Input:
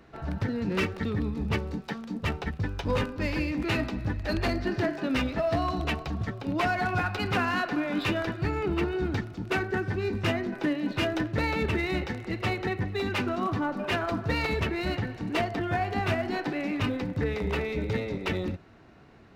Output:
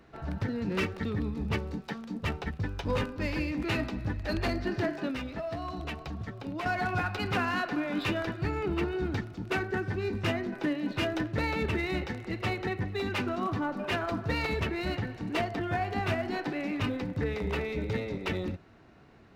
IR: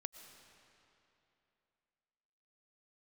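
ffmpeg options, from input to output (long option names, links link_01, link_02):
-filter_complex "[0:a]asettb=1/sr,asplit=3[link_01][link_02][link_03];[link_01]atrim=end=5.104[link_04];[link_02]atrim=start=5.1:end=6.66,asetpts=PTS-STARTPTS,afade=type=in:duration=0.004:curve=qsin,afade=type=out:start_time=1.556:duration=0.004:curve=qsin,acompressor=threshold=-33dB:ratio=2.5[link_05];[link_03]atrim=start=6.656[link_06];[link_04][link_05]acrossfade=duration=0.004:curve1=hsin:curve2=qsin[link_07];[link_07][link_06]acrossfade=duration=0.004:curve1=qsin:curve2=hsin,volume=-2.5dB"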